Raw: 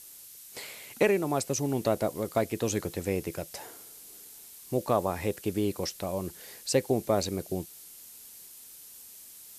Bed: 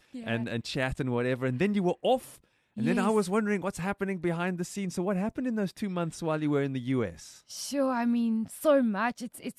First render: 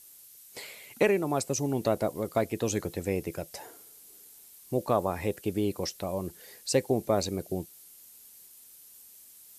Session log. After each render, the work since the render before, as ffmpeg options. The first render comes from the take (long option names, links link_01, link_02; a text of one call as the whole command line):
ffmpeg -i in.wav -af "afftdn=noise_reduction=6:noise_floor=-49" out.wav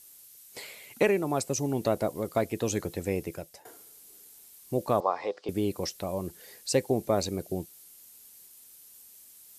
ffmpeg -i in.wav -filter_complex "[0:a]asettb=1/sr,asplit=3[link_01][link_02][link_03];[link_01]atrim=end=5.004[link_04];[link_02]atrim=start=5:end=5.49,asetpts=PTS-STARTPTS,afade=type=in:duration=0.004:curve=qsin,afade=type=out:start_time=0.486:duration=0.004:curve=qsin,highpass=490,equalizer=frequency=490:width_type=q:width=4:gain=5,equalizer=frequency=750:width_type=q:width=4:gain=5,equalizer=frequency=1100:width_type=q:width=4:gain=10,equalizer=frequency=1700:width_type=q:width=4:gain=-4,equalizer=frequency=2600:width_type=q:width=4:gain=-6,equalizer=frequency=4900:width_type=q:width=4:gain=6,lowpass=frequency=5000:width=0.5412,lowpass=frequency=5000:width=1.3066[link_05];[link_03]atrim=start=5.486[link_06];[link_04][link_05]acrossfade=duration=0.004:curve1=hsin:curve2=qsin[link_07];[link_07][link_06]acrossfade=duration=0.004:curve1=qsin:curve2=hsin,asplit=2[link_08][link_09];[link_08]atrim=end=3.65,asetpts=PTS-STARTPTS,afade=type=out:start_time=3.09:duration=0.56:curve=qsin:silence=0.141254[link_10];[link_09]atrim=start=3.65,asetpts=PTS-STARTPTS,afade=type=in:duration=0.004:curve=hsin:silence=0.141254[link_11];[link_10][link_11]concat=n=2:v=0:a=1" out.wav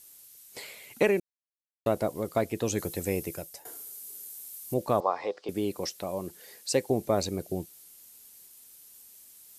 ffmpeg -i in.wav -filter_complex "[0:a]asettb=1/sr,asplit=3[link_01][link_02][link_03];[link_01]atrim=end=2.784[link_04];[link_02]atrim=start=2.78:end=4.74,asetpts=PTS-STARTPTS,afade=type=in:duration=0.004:curve=qsin,afade=type=out:start_time=1.956:duration=0.004:curve=qsin,highshelf=frequency=6400:gain=11.5[link_05];[link_03]atrim=start=4.736[link_06];[link_04][link_05]acrossfade=duration=0.004:curve1=hsin:curve2=qsin[link_07];[link_07][link_06]acrossfade=duration=0.004:curve1=qsin:curve2=hsin,asettb=1/sr,asplit=3[link_08][link_09][link_10];[link_08]atrim=end=5.404[link_11];[link_09]atrim=start=5.4:end=6.9,asetpts=PTS-STARTPTS,afade=type=in:duration=0.004:curve=qsin,afade=type=out:start_time=1.496:duration=0.004:curve=qsin,highpass=frequency=180:poles=1[link_12];[link_10]atrim=start=6.896[link_13];[link_11][link_12]acrossfade=duration=0.004:curve1=hsin:curve2=qsin[link_14];[link_14][link_13]acrossfade=duration=0.004:curve1=qsin:curve2=hsin,asplit=3[link_15][link_16][link_17];[link_15]atrim=end=1.2,asetpts=PTS-STARTPTS,afade=type=out:start_time=1.196:duration=0.004:curve=hsin[link_18];[link_16]atrim=start=1.2:end=1.86,asetpts=PTS-STARTPTS,volume=0[link_19];[link_17]atrim=start=1.86,asetpts=PTS-STARTPTS,afade=type=in:duration=0.004:curve=hsin[link_20];[link_18][link_19][link_20]concat=n=3:v=0:a=1" out.wav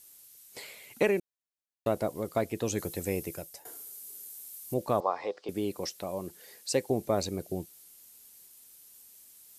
ffmpeg -i in.wav -af "volume=-2dB" out.wav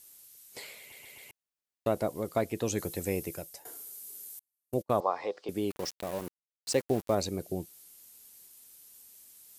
ffmpeg -i in.wav -filter_complex "[0:a]asettb=1/sr,asplit=3[link_01][link_02][link_03];[link_01]atrim=end=4.394[link_04];[link_02]atrim=start=4.39:end=4.95,asetpts=PTS-STARTPTS,afade=type=in:duration=0.004:curve=qsin,afade=type=out:start_time=0.556:duration=0.004:curve=qsin,agate=range=-42dB:threshold=-35dB:ratio=16:release=100:detection=peak[link_05];[link_03]atrim=start=4.946[link_06];[link_04][link_05]acrossfade=duration=0.004:curve1=hsin:curve2=qsin[link_07];[link_07][link_06]acrossfade=duration=0.004:curve1=qsin:curve2=hsin,asettb=1/sr,asplit=3[link_08][link_09][link_10];[link_08]atrim=end=5.704[link_11];[link_09]atrim=start=5.7:end=7.15,asetpts=PTS-STARTPTS,afade=type=in:duration=0.004:curve=qsin,afade=type=out:start_time=1.446:duration=0.004:curve=qsin,aeval=exprs='val(0)*gte(abs(val(0)),0.0112)':channel_layout=same[link_12];[link_10]atrim=start=7.146[link_13];[link_11][link_12]acrossfade=duration=0.004:curve1=hsin:curve2=qsin[link_14];[link_14][link_13]acrossfade=duration=0.004:curve1=qsin:curve2=hsin,asplit=5[link_15][link_16][link_17][link_18][link_19];[link_15]atrim=end=0.922[link_20];[link_16]atrim=start=0.788:end=0.922[link_21];[link_17]atrim=start=0.788:end=0.922[link_22];[link_18]atrim=start=0.788:end=0.922[link_23];[link_19]atrim=start=1.308[link_24];[link_20][link_21]acrossfade=duration=0.004:curve1=hsin:curve2=hsin[link_25];[link_25][link_22]acrossfade=duration=0.004:curve1=hsin:curve2=hsin[link_26];[link_26][link_23]acrossfade=duration=0.004:curve1=hsin:curve2=hsin[link_27];[link_27][link_24]acrossfade=duration=0.004:curve1=hsin:curve2=hsin" out.wav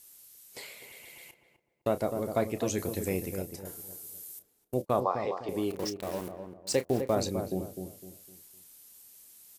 ffmpeg -i in.wav -filter_complex "[0:a]asplit=2[link_01][link_02];[link_02]adelay=32,volume=-12dB[link_03];[link_01][link_03]amix=inputs=2:normalize=0,asplit=2[link_04][link_05];[link_05]adelay=254,lowpass=frequency=930:poles=1,volume=-6dB,asplit=2[link_06][link_07];[link_07]adelay=254,lowpass=frequency=930:poles=1,volume=0.36,asplit=2[link_08][link_09];[link_09]adelay=254,lowpass=frequency=930:poles=1,volume=0.36,asplit=2[link_10][link_11];[link_11]adelay=254,lowpass=frequency=930:poles=1,volume=0.36[link_12];[link_04][link_06][link_08][link_10][link_12]amix=inputs=5:normalize=0" out.wav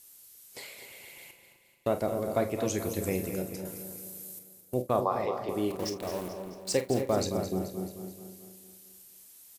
ffmpeg -i in.wav -filter_complex "[0:a]asplit=2[link_01][link_02];[link_02]adelay=48,volume=-12dB[link_03];[link_01][link_03]amix=inputs=2:normalize=0,asplit=2[link_04][link_05];[link_05]aecho=0:1:217|434|651|868|1085|1302:0.282|0.155|0.0853|0.0469|0.0258|0.0142[link_06];[link_04][link_06]amix=inputs=2:normalize=0" out.wav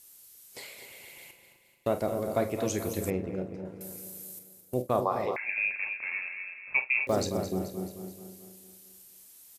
ffmpeg -i in.wav -filter_complex "[0:a]asettb=1/sr,asplit=3[link_01][link_02][link_03];[link_01]atrim=end=3.104[link_04];[link_02]atrim=start=3.1:end=3.81,asetpts=PTS-STARTPTS,afade=type=in:duration=0.004:curve=qsin,afade=type=out:start_time=0.706:duration=0.004:curve=qsin,adynamicsmooth=sensitivity=1.5:basefreq=1700[link_05];[link_03]atrim=start=3.806[link_06];[link_04][link_05]acrossfade=duration=0.004:curve1=hsin:curve2=qsin[link_07];[link_07][link_06]acrossfade=duration=0.004:curve1=qsin:curve2=hsin,asettb=1/sr,asplit=3[link_08][link_09][link_10];[link_08]atrim=end=5.364[link_11];[link_09]atrim=start=5.36:end=7.07,asetpts=PTS-STARTPTS,afade=type=in:duration=0.004:curve=qsin,afade=type=out:start_time=1.706:duration=0.004:curve=qsin,lowpass=frequency=2400:width_type=q:width=0.5098,lowpass=frequency=2400:width_type=q:width=0.6013,lowpass=frequency=2400:width_type=q:width=0.9,lowpass=frequency=2400:width_type=q:width=2.563,afreqshift=-2800[link_12];[link_10]atrim=start=7.066[link_13];[link_11][link_12]acrossfade=duration=0.004:curve1=hsin:curve2=qsin[link_14];[link_14][link_13]acrossfade=duration=0.004:curve1=qsin:curve2=hsin" out.wav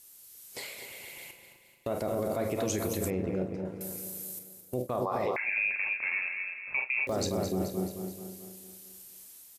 ffmpeg -i in.wav -af "alimiter=level_in=0.5dB:limit=-24dB:level=0:latency=1:release=42,volume=-0.5dB,dynaudnorm=framelen=130:gausssize=5:maxgain=3.5dB" out.wav